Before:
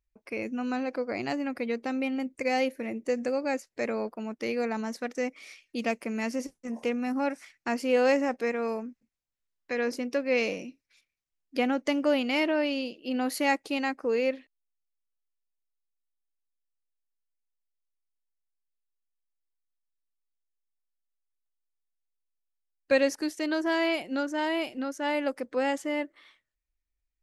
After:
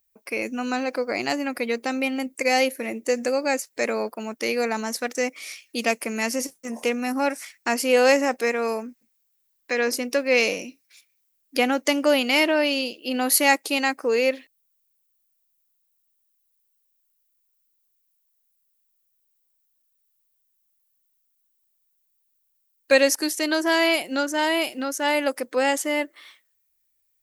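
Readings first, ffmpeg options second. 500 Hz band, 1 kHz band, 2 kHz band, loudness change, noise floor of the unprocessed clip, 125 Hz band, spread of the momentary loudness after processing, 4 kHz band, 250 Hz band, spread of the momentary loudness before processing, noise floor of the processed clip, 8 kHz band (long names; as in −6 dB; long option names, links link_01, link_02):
+5.5 dB, +6.5 dB, +8.5 dB, +6.5 dB, −83 dBFS, can't be measured, 10 LU, +10.5 dB, +3.0 dB, 9 LU, −71 dBFS, +16.5 dB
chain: -af "aemphasis=mode=production:type=bsi,volume=7dB"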